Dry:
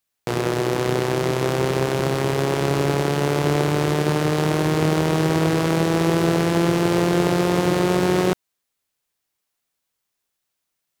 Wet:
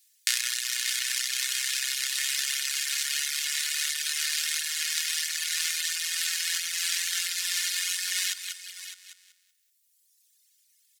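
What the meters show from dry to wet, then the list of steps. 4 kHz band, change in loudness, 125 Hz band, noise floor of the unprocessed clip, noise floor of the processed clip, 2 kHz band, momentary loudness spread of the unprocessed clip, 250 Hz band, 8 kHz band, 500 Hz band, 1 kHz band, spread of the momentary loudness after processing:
+4.5 dB, -6.0 dB, under -40 dB, -79 dBFS, -68 dBFS, -2.5 dB, 3 LU, under -40 dB, +8.5 dB, under -40 dB, -25.0 dB, 1 LU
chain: feedback echo 0.189 s, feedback 30%, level -8 dB; compressor 2.5:1, threshold -26 dBFS, peak gain reduction 9 dB; elliptic high-pass 1700 Hz, stop band 80 dB; bell 7200 Hz +10.5 dB 2.9 oct; echo 0.608 s -9.5 dB; reverb removal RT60 1.8 s; high shelf 5500 Hz +6.5 dB; comb 2.8 ms, depth 51%; gain +3 dB

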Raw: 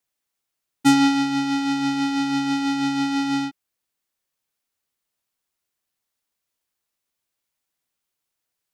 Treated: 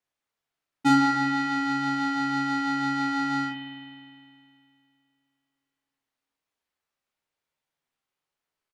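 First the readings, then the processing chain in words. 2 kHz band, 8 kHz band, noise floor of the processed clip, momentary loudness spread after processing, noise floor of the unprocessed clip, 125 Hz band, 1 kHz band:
+1.0 dB, -10.0 dB, under -85 dBFS, 11 LU, -82 dBFS, -1.5 dB, 0.0 dB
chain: low shelf 390 Hz -5 dB; early reflections 13 ms -7.5 dB, 44 ms -5 dB; in parallel at -10.5 dB: soft clip -21.5 dBFS, distortion -11 dB; on the sum: LPF 2100 Hz 6 dB/oct; spring tank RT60 2.5 s, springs 51 ms, chirp 30 ms, DRR 5 dB; gain -2.5 dB

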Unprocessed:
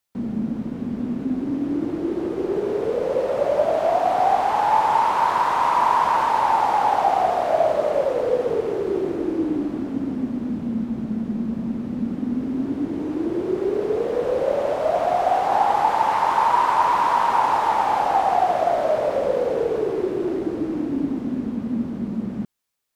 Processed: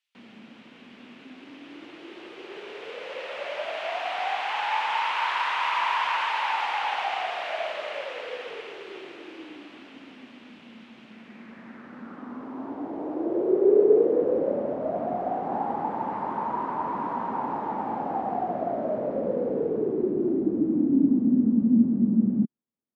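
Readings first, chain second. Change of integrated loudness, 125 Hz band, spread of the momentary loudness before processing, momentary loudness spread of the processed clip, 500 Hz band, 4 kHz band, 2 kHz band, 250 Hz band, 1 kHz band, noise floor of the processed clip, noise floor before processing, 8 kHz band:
-4.5 dB, -4.0 dB, 8 LU, 21 LU, -5.5 dB, +2.0 dB, -0.5 dB, -1.5 dB, -10.0 dB, -50 dBFS, -31 dBFS, n/a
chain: dynamic EQ 1800 Hz, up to +4 dB, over -33 dBFS, Q 0.99; band-pass sweep 2800 Hz -> 230 Hz, 11.05–14.68; gain +6 dB

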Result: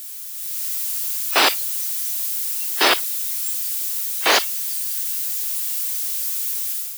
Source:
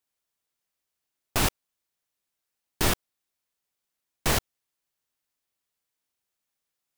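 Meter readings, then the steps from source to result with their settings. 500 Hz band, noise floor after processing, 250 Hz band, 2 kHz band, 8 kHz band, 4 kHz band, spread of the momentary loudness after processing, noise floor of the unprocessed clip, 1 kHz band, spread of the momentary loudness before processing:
+8.5 dB, -32 dBFS, +1.0 dB, +12.5 dB, +13.0 dB, +13.5 dB, 6 LU, -85 dBFS, +11.5 dB, 5 LU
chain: switching spikes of -17 dBFS; Bessel high-pass 510 Hz, order 8; spectral noise reduction 16 dB; AGC gain up to 10 dB; gain +2.5 dB

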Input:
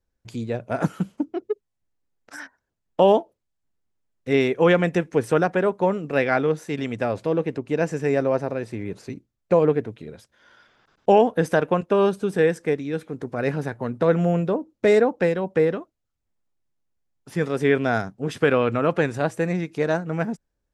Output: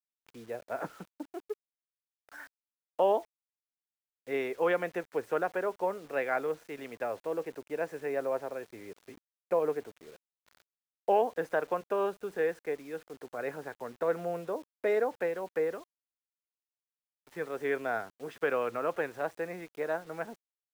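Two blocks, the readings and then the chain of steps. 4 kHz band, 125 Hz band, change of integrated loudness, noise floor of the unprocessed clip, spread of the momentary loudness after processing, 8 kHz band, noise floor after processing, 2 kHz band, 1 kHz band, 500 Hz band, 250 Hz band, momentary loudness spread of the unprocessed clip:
under -10 dB, -24.0 dB, -11.0 dB, -79 dBFS, 15 LU, n/a, under -85 dBFS, -9.5 dB, -8.5 dB, -10.5 dB, -17.5 dB, 14 LU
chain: three-band isolator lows -18 dB, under 370 Hz, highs -14 dB, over 2500 Hz; requantised 8-bit, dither none; gain -8 dB

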